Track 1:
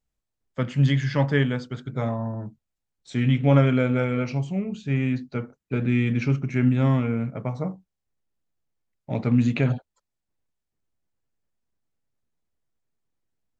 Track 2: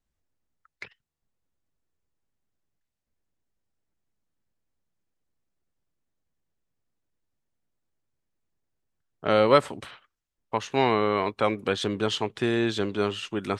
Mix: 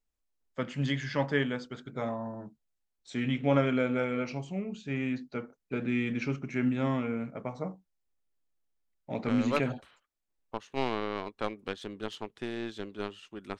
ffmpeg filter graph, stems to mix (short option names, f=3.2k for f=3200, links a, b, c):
-filter_complex "[0:a]volume=-4dB,asplit=2[a][b];[1:a]aeval=exprs='0.631*(cos(1*acos(clip(val(0)/0.631,-1,1)))-cos(1*PI/2))+0.0562*(cos(7*acos(clip(val(0)/0.631,-1,1)))-cos(7*PI/2))':c=same,lowshelf=f=230:g=11,volume=-8dB[c];[b]apad=whole_len=599544[d];[c][d]sidechaincompress=threshold=-29dB:ratio=8:attack=23:release=220[e];[a][e]amix=inputs=2:normalize=0,equalizer=f=110:t=o:w=1.2:g=-12"